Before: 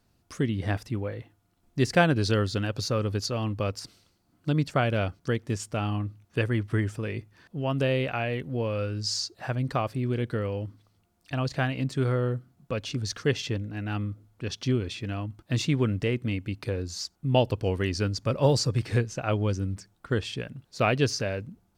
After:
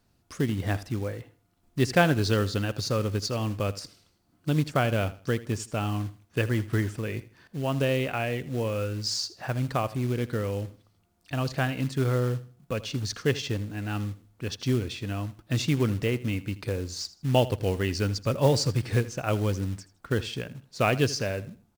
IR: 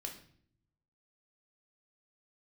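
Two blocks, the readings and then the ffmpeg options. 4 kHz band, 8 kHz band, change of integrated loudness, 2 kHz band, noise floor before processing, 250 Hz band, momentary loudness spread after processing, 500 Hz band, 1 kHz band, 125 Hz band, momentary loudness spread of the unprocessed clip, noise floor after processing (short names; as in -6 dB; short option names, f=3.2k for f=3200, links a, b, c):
+0.5 dB, +1.0 dB, 0.0 dB, 0.0 dB, -69 dBFS, 0.0 dB, 10 LU, 0.0 dB, 0.0 dB, 0.0 dB, 11 LU, -68 dBFS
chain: -filter_complex "[0:a]acrusher=bits=5:mode=log:mix=0:aa=0.000001,asplit=2[a][b];[b]aecho=0:1:80|160|240:0.133|0.0373|0.0105[c];[a][c]amix=inputs=2:normalize=0"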